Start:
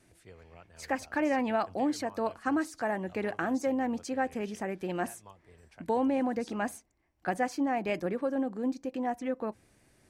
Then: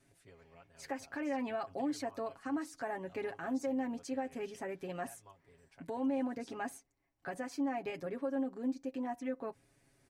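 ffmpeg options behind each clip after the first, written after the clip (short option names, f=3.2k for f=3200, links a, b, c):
-af "alimiter=limit=-23.5dB:level=0:latency=1:release=103,aecho=1:1:7.3:0.73,volume=-7.5dB"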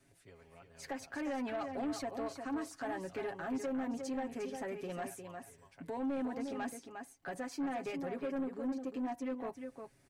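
-filter_complex "[0:a]aecho=1:1:355:0.398,acrossover=split=140[a][b];[b]asoftclip=type=tanh:threshold=-33dB[c];[a][c]amix=inputs=2:normalize=0,volume=1dB"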